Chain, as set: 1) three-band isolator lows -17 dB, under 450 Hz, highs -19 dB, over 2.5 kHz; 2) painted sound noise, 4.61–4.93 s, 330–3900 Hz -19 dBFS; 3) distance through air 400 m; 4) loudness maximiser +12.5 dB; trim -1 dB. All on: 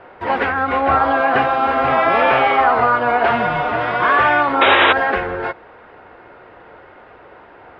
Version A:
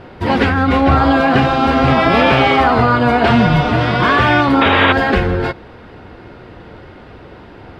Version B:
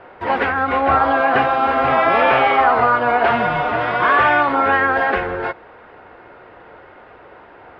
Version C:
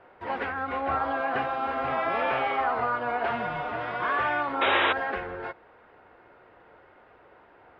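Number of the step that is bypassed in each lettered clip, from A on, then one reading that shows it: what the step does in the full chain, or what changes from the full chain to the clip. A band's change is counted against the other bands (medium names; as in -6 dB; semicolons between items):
1, 125 Hz band +13.5 dB; 2, 4 kHz band -6.0 dB; 4, crest factor change +5.5 dB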